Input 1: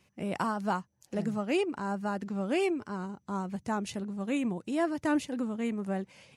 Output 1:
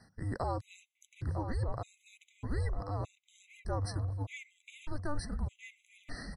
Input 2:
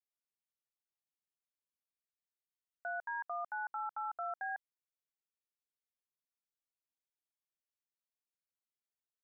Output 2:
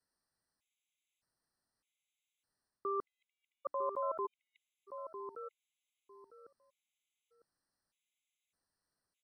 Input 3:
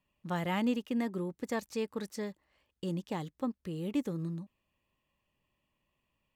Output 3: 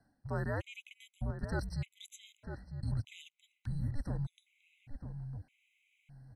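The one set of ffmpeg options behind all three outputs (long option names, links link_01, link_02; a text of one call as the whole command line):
ffmpeg -i in.wav -filter_complex "[0:a]equalizer=frequency=7000:width_type=o:width=0.94:gain=-6,areverse,acompressor=threshold=-47dB:ratio=4,areverse,afreqshift=-300,lowpass=frequency=9800:width=0.5412,lowpass=frequency=9800:width=1.3066,highshelf=frequency=5100:gain=5,asplit=2[link_01][link_02];[link_02]adelay=952,lowpass=frequency=1200:poles=1,volume=-7.5dB,asplit=2[link_03][link_04];[link_04]adelay=952,lowpass=frequency=1200:poles=1,volume=0.25,asplit=2[link_05][link_06];[link_06]adelay=952,lowpass=frequency=1200:poles=1,volume=0.25[link_07];[link_03][link_05][link_07]amix=inputs=3:normalize=0[link_08];[link_01][link_08]amix=inputs=2:normalize=0,afftfilt=real='re*gt(sin(2*PI*0.82*pts/sr)*(1-2*mod(floor(b*sr/1024/2000),2)),0)':imag='im*gt(sin(2*PI*0.82*pts/sr)*(1-2*mod(floor(b*sr/1024/2000),2)),0)':win_size=1024:overlap=0.75,volume=12dB" out.wav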